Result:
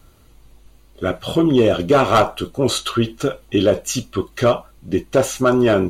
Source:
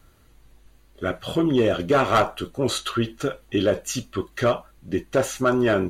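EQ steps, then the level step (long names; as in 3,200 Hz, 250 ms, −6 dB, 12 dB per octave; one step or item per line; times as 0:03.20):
parametric band 1,700 Hz −7 dB 0.45 octaves
+5.5 dB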